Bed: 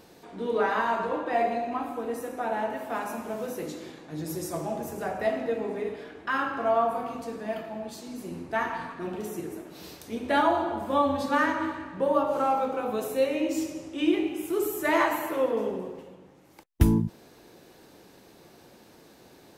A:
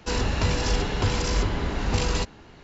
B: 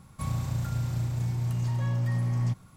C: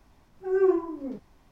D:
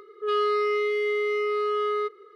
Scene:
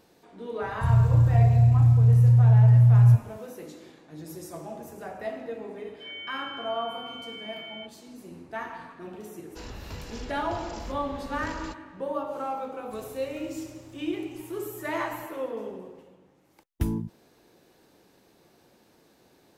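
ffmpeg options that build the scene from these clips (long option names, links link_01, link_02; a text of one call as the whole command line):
ffmpeg -i bed.wav -i cue0.wav -i cue1.wav -i cue2.wav -i cue3.wav -filter_complex "[2:a]asplit=2[link_01][link_02];[0:a]volume=-7dB[link_03];[link_01]lowshelf=frequency=170:width_type=q:width=3:gain=13.5[link_04];[4:a]lowpass=frequency=3000:width_type=q:width=0.5098,lowpass=frequency=3000:width_type=q:width=0.6013,lowpass=frequency=3000:width_type=q:width=0.9,lowpass=frequency=3000:width_type=q:width=2.563,afreqshift=-3500[link_05];[link_02]equalizer=frequency=140:width=0.47:gain=-14.5[link_06];[link_04]atrim=end=2.76,asetpts=PTS-STARTPTS,volume=-8.5dB,afade=type=in:duration=0.004:curve=hsin,afade=type=out:start_time=2.756:duration=0.004:curve=hsin,adelay=620[link_07];[link_05]atrim=end=2.35,asetpts=PTS-STARTPTS,volume=-16.5dB,afade=type=in:duration=0.004:curve=hsin,afade=type=out:start_time=2.346:duration=0.004:curve=hsin,adelay=5780[link_08];[1:a]atrim=end=2.63,asetpts=PTS-STARTPTS,volume=-16dB,afade=type=in:duration=0.004:curve=hsin,afade=type=out:start_time=2.626:duration=0.004:curve=hsin,adelay=9490[link_09];[link_06]atrim=end=2.76,asetpts=PTS-STARTPTS,volume=-11dB,afade=type=in:duration=0.004:curve=hsin,afade=type=out:start_time=2.756:duration=0.004:curve=hsin,adelay=12720[link_10];[link_03][link_07][link_08][link_09][link_10]amix=inputs=5:normalize=0" out.wav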